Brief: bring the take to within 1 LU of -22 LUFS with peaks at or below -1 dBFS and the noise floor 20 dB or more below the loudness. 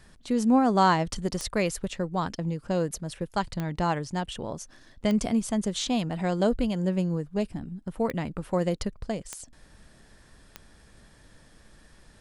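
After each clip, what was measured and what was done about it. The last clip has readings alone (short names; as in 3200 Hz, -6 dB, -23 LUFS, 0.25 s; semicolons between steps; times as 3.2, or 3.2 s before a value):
clicks 6; loudness -28.0 LUFS; peak -10.0 dBFS; loudness target -22.0 LUFS
-> de-click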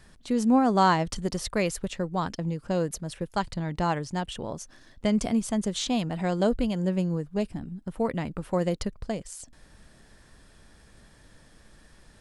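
clicks 0; loudness -28.0 LUFS; peak -10.0 dBFS; loudness target -22.0 LUFS
-> gain +6 dB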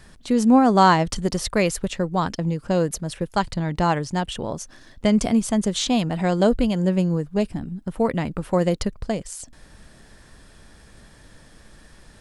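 loudness -22.0 LUFS; peak -4.0 dBFS; noise floor -50 dBFS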